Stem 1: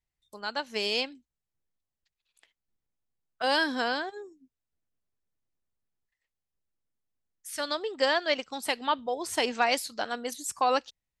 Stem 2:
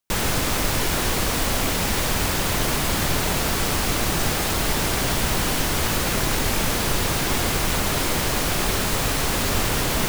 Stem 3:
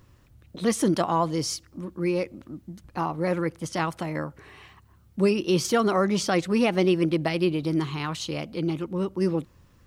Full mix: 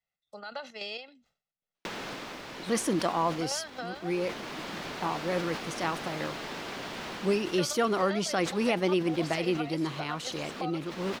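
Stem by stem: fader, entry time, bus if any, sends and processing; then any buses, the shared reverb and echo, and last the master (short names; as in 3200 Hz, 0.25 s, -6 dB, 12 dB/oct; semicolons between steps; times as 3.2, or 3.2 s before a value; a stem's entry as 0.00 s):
-0.5 dB, 0.00 s, bus A, no send, comb 1.5 ms, depth 93%; chopper 3.7 Hz, depth 65%, duty 60%
-3.0 dB, 1.75 s, bus A, no send, auto duck -13 dB, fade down 0.30 s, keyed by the first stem
-3.5 dB, 2.05 s, no bus, no send, low shelf 150 Hz -10.5 dB
bus A: 0.0 dB, three-band isolator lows -22 dB, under 170 Hz, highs -20 dB, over 5200 Hz; compressor, threshold -36 dBFS, peak gain reduction 17.5 dB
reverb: off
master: sustainer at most 140 dB/s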